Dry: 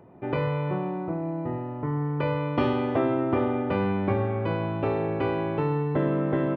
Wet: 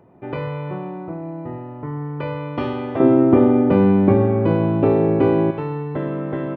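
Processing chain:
0:03.00–0:05.51: parametric band 250 Hz +13.5 dB 2.9 octaves

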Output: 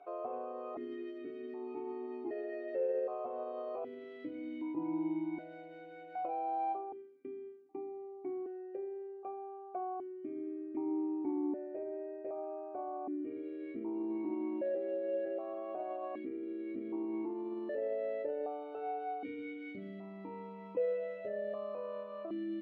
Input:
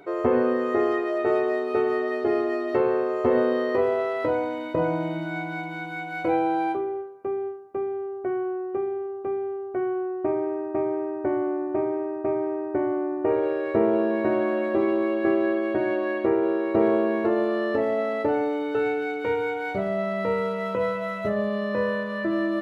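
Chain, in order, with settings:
dynamic equaliser 2,000 Hz, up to −8 dB, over −45 dBFS, Q 0.95
brickwall limiter −20 dBFS, peak gain reduction 10 dB
formant filter that steps through the vowels 1.3 Hz

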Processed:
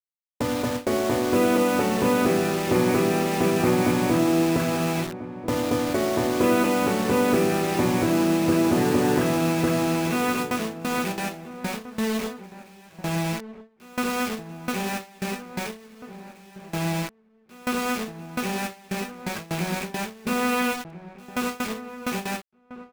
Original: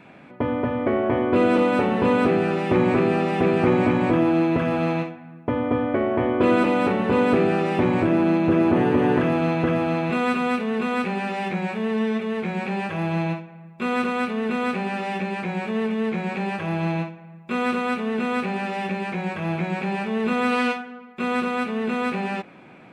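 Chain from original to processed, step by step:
bit reduction 5 bits
noise gate with hold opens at −17 dBFS
slap from a distant wall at 230 metres, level −13 dB
level −2 dB

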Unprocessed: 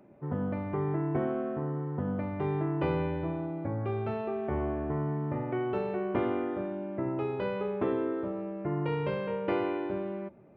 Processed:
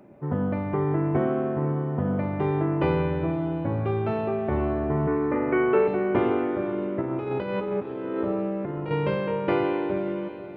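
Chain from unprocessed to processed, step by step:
0:05.07–0:05.88: loudspeaker in its box 250–3,100 Hz, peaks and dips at 280 Hz +9 dB, 460 Hz +9 dB, 690 Hz −5 dB, 1,100 Hz +6 dB, 1,500 Hz +7 dB, 2,200 Hz +9 dB
0:07.01–0:08.91: compressor whose output falls as the input rises −34 dBFS, ratio −0.5
feedback delay with all-pass diffusion 536 ms, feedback 40%, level −12 dB
level +6 dB

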